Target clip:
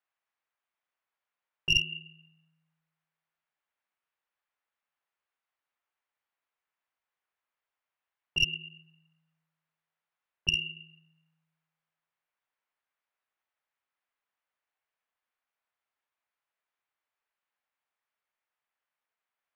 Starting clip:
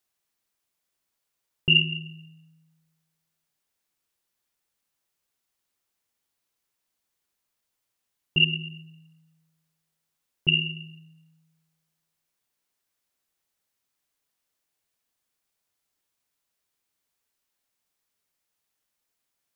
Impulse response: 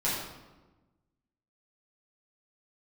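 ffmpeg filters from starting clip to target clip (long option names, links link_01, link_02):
-filter_complex "[0:a]acrossover=split=590 2700:gain=0.158 1 0.0631[link_01][link_02][link_03];[link_01][link_02][link_03]amix=inputs=3:normalize=0,aeval=exprs='0.211*(cos(1*acos(clip(val(0)/0.211,-1,1)))-cos(1*PI/2))+0.0841*(cos(2*acos(clip(val(0)/0.211,-1,1)))-cos(2*PI/2))+0.00841*(cos(4*acos(clip(val(0)/0.211,-1,1)))-cos(4*PI/2))+0.00335*(cos(8*acos(clip(val(0)/0.211,-1,1)))-cos(8*PI/2))':channel_layout=same"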